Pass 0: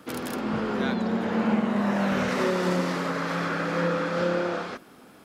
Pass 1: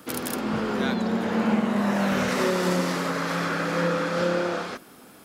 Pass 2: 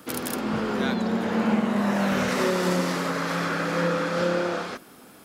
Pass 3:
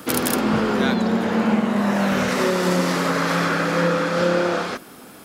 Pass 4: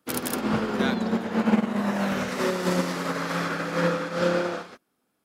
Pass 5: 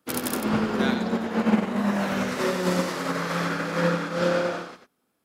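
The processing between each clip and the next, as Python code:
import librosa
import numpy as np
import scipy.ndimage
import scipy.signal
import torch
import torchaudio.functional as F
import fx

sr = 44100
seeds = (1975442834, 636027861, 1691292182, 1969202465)

y1 = fx.high_shelf(x, sr, hz=6200.0, db=10.0)
y1 = F.gain(torch.from_numpy(y1), 1.0).numpy()
y2 = y1
y3 = fx.rider(y2, sr, range_db=10, speed_s=0.5)
y3 = F.gain(torch.from_numpy(y3), 5.0).numpy()
y4 = fx.upward_expand(y3, sr, threshold_db=-37.0, expansion=2.5)
y5 = y4 + 10.0 ** (-7.5 / 20.0) * np.pad(y4, (int(93 * sr / 1000.0), 0))[:len(y4)]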